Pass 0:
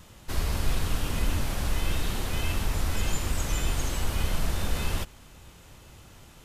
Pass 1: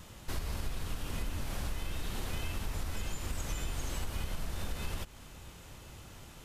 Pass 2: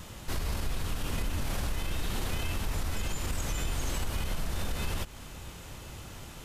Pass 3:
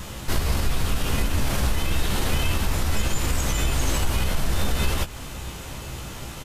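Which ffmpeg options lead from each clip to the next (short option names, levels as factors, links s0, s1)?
-af "acompressor=threshold=0.0251:ratio=6"
-af "alimiter=level_in=1.78:limit=0.0631:level=0:latency=1:release=16,volume=0.562,volume=2"
-filter_complex "[0:a]asplit=2[s0][s1];[s1]adelay=15,volume=0.473[s2];[s0][s2]amix=inputs=2:normalize=0,volume=2.66"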